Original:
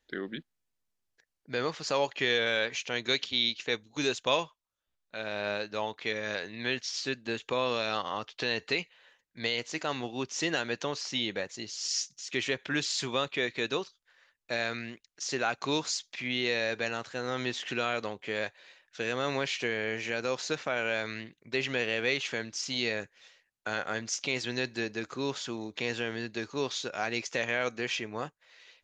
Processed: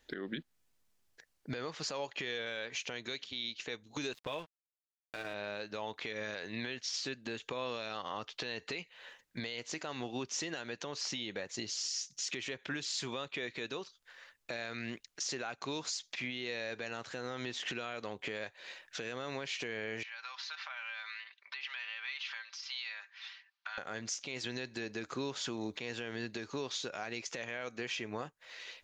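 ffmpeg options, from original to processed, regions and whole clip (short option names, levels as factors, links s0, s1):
-filter_complex "[0:a]asettb=1/sr,asplit=3[s0][s1][s2];[s0]atrim=end=4.134[s3];[s1]atrim=start=4.13:end=5.34,asetpts=PTS-STARTPTS,afade=t=in:d=0.004:c=qsin,afade=t=out:st=1.206:d=0.004:c=qsin,lowpass=3200,aecho=1:1:6.5:0.52,atrim=end_sample=53361,aeval=exprs='sgn(val(0))*max(abs(val(0))-0.00596,0)':c=same[s4];[s2]atrim=start=5.336[s5];[s3][s4]acrossfade=d=0.004:c1=hsin:c2=qsin[s6];[s6][s5]acrossfade=d=0.004:c1=qsin:c2=hsin,asettb=1/sr,asplit=3[s7][s8][s9];[s7]atrim=end=20.034[s10];[s8]atrim=start=20.03:end=23.78,asetpts=PTS-STARTPTS,afade=t=in:d=0.004:c=qsin,afade=t=out:st=3.746:d=0.004:c=qsin,aecho=1:1:5.1:0.57,atrim=end_sample=165375,acompressor=threshold=0.00501:ratio=5:attack=3.2:release=140:knee=1:detection=peak,asuperpass=centerf=2200:order=8:qfactor=0.54[s11];[s9]atrim=start=23.776[s12];[s10][s11]acrossfade=d=0.004:c1=hsin:c2=qsin[s13];[s13][s12]acrossfade=d=0.004:c1=qsin:c2=hsin,acompressor=threshold=0.01:ratio=3,alimiter=level_in=3.55:limit=0.0631:level=0:latency=1:release=285,volume=0.282,volume=2.51"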